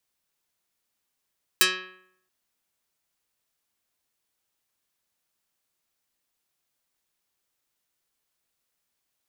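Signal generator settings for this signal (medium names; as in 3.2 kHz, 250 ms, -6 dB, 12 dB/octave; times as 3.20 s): plucked string F#3, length 0.68 s, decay 0.72 s, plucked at 0.26, dark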